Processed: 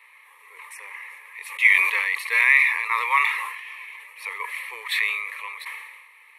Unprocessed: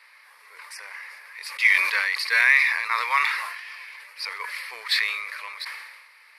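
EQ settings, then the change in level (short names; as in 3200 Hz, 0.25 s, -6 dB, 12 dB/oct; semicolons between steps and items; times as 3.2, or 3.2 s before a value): fixed phaser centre 1000 Hz, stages 8; +3.0 dB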